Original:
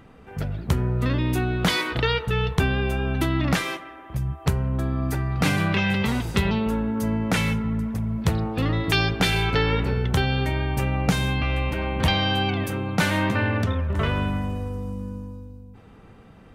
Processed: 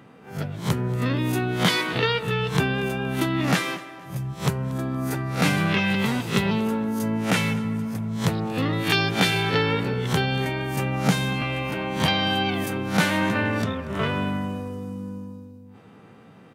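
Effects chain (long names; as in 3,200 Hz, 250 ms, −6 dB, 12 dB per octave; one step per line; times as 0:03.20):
peak hold with a rise ahead of every peak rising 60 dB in 0.31 s
high-pass filter 120 Hz 24 dB per octave
on a send: repeating echo 234 ms, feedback 33%, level −20 dB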